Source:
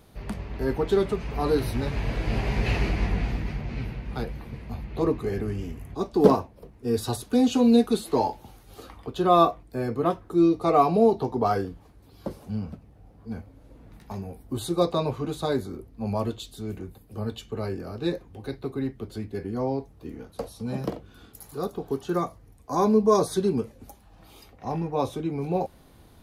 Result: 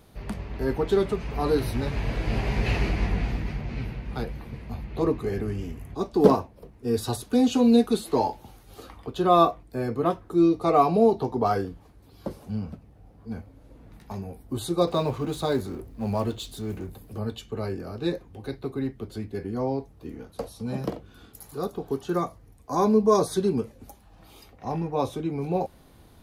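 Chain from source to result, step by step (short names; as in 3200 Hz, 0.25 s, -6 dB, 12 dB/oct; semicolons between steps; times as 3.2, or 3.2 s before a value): 14.87–17.18 G.711 law mismatch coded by mu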